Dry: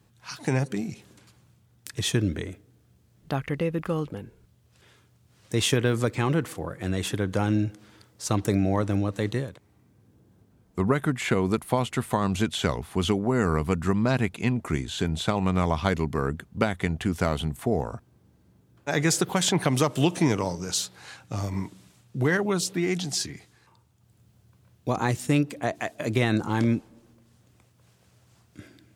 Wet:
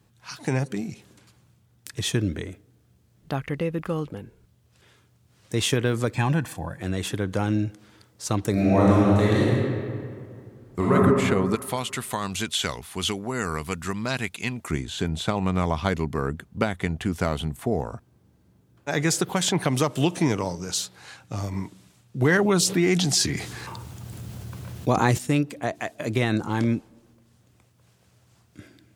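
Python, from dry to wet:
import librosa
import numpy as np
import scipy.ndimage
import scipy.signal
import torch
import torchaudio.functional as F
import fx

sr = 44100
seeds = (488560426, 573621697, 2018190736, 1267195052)

y = fx.comb(x, sr, ms=1.2, depth=0.65, at=(6.14, 6.8))
y = fx.reverb_throw(y, sr, start_s=8.52, length_s=2.41, rt60_s=2.2, drr_db=-7.5)
y = fx.tilt_shelf(y, sr, db=-7.0, hz=1400.0, at=(11.55, 14.71))
y = fx.env_flatten(y, sr, amount_pct=50, at=(22.21, 25.17), fade=0.02)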